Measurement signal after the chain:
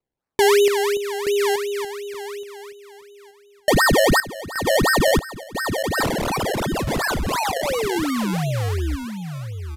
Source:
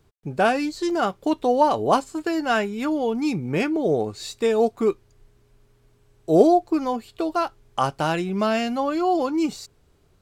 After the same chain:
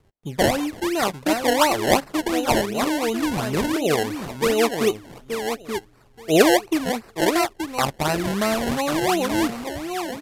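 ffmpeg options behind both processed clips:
-af "aecho=1:1:877|1754|2631:0.447|0.0715|0.0114,acrusher=samples=25:mix=1:aa=0.000001:lfo=1:lforange=25:lforate=2.8,aresample=32000,aresample=44100"

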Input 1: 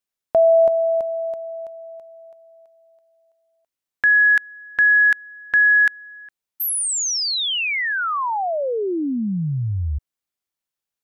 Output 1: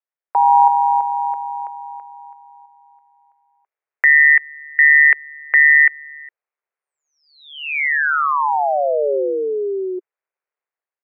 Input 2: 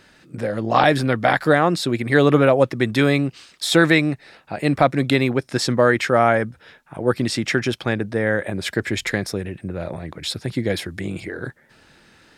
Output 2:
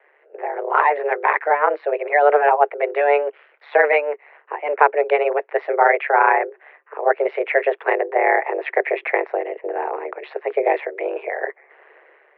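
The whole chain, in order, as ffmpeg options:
-af "aeval=exprs='val(0)*sin(2*PI*73*n/s)':c=same,highpass=f=150:t=q:w=0.5412,highpass=f=150:t=q:w=1.307,lowpass=f=2100:t=q:w=0.5176,lowpass=f=2100:t=q:w=0.7071,lowpass=f=2100:t=q:w=1.932,afreqshift=220,dynaudnorm=f=180:g=5:m=2.51"

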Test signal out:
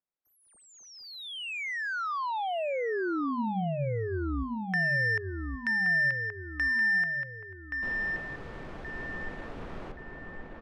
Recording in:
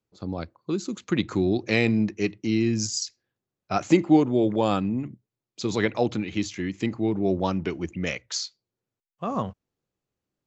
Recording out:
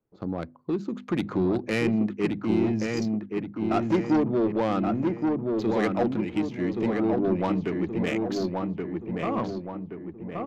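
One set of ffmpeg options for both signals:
-filter_complex "[0:a]equalizer=f=86:w=1.9:g=-6,bandreject=f=50:t=h:w=6,bandreject=f=100:t=h:w=6,bandreject=f=150:t=h:w=6,bandreject=f=200:t=h:w=6,bandreject=f=250:t=h:w=6,asplit=2[s0][s1];[s1]acompressor=threshold=0.0141:ratio=6,volume=0.891[s2];[s0][s2]amix=inputs=2:normalize=0,asoftclip=type=tanh:threshold=0.133,adynamicsmooth=sensitivity=1.5:basefreq=1500,asplit=2[s3][s4];[s4]adelay=1125,lowpass=f=2000:p=1,volume=0.708,asplit=2[s5][s6];[s6]adelay=1125,lowpass=f=2000:p=1,volume=0.51,asplit=2[s7][s8];[s8]adelay=1125,lowpass=f=2000:p=1,volume=0.51,asplit=2[s9][s10];[s10]adelay=1125,lowpass=f=2000:p=1,volume=0.51,asplit=2[s11][s12];[s12]adelay=1125,lowpass=f=2000:p=1,volume=0.51,asplit=2[s13][s14];[s14]adelay=1125,lowpass=f=2000:p=1,volume=0.51,asplit=2[s15][s16];[s16]adelay=1125,lowpass=f=2000:p=1,volume=0.51[s17];[s5][s7][s9][s11][s13][s15][s17]amix=inputs=7:normalize=0[s18];[s3][s18]amix=inputs=2:normalize=0,aresample=32000,aresample=44100"

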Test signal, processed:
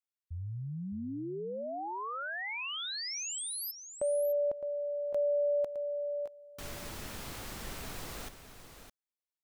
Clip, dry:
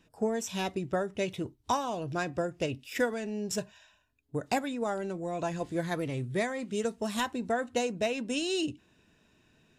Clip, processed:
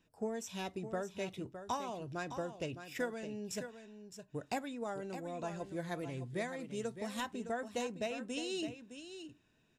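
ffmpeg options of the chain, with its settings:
-af "aecho=1:1:612:0.316,volume=0.376"

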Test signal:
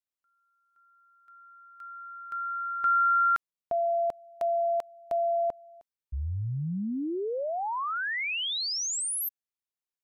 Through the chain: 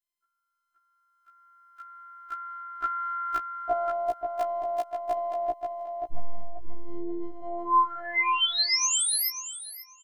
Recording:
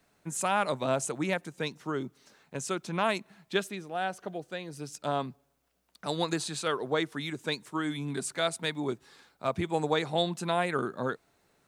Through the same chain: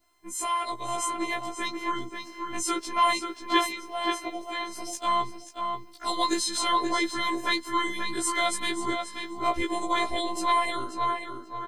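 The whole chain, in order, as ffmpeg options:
-filter_complex "[0:a]adynamicequalizer=threshold=0.00631:dfrequency=1600:dqfactor=1:tfrequency=1600:tqfactor=1:attack=5:release=100:ratio=0.375:range=3.5:mode=cutabove:tftype=bell,dynaudnorm=f=420:g=7:m=2,afftfilt=real='hypot(re,im)*cos(PI*b)':imag='0':win_size=512:overlap=0.75,asplit=2[s0][s1];[s1]adelay=535,lowpass=f=3400:p=1,volume=0.562,asplit=2[s2][s3];[s3]adelay=535,lowpass=f=3400:p=1,volume=0.28,asplit=2[s4][s5];[s5]adelay=535,lowpass=f=3400:p=1,volume=0.28,asplit=2[s6][s7];[s7]adelay=535,lowpass=f=3400:p=1,volume=0.28[s8];[s2][s4][s6][s8]amix=inputs=4:normalize=0[s9];[s0][s9]amix=inputs=2:normalize=0,afftfilt=real='re*1.73*eq(mod(b,3),0)':imag='im*1.73*eq(mod(b,3),0)':win_size=2048:overlap=0.75,volume=2.37"

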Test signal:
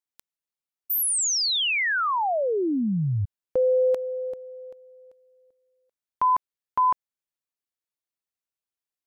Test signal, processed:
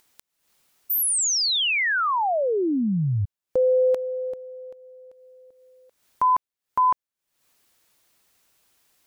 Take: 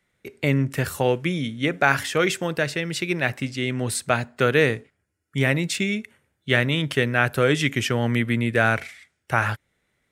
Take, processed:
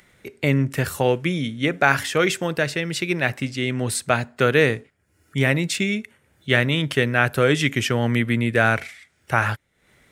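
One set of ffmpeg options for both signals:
-af "acompressor=mode=upward:threshold=0.00708:ratio=2.5:attack=1.8:release=266:knee=2.83:detection=peak,volume=1.19"

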